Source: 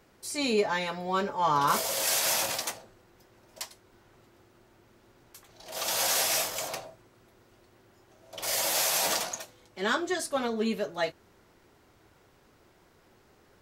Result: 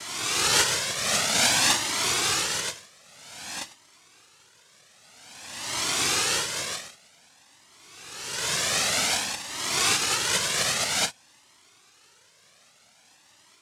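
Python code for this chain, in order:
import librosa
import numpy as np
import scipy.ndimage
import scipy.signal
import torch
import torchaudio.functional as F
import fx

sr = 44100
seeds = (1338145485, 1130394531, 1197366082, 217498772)

y = fx.spec_swells(x, sr, rise_s=1.47)
y = fx.noise_vocoder(y, sr, seeds[0], bands=1)
y = fx.comb_cascade(y, sr, direction='rising', hz=0.52)
y = y * 10.0 ** (5.0 / 20.0)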